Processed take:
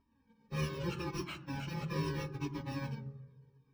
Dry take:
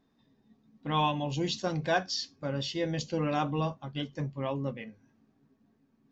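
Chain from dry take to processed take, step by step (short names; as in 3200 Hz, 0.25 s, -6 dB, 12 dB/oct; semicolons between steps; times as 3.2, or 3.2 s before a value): FFT order left unsorted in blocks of 64 samples; plain phase-vocoder stretch 0.61×; in parallel at -10.5 dB: bit-crush 6-bit; on the sum: air absorption 210 m; on a send at -11.5 dB: reverb RT60 1.1 s, pre-delay 3 ms; on the sum: cascading flanger falling 0.77 Hz; gain +4 dB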